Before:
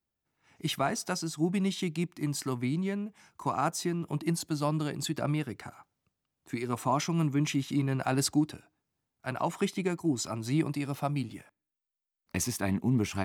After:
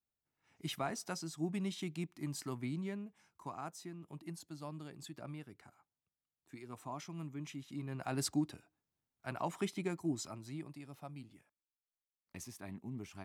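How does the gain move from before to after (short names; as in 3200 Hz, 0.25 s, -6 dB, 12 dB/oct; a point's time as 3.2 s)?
2.94 s -9 dB
3.73 s -16.5 dB
7.65 s -16.5 dB
8.27 s -7.5 dB
10.12 s -7.5 dB
10.6 s -17.5 dB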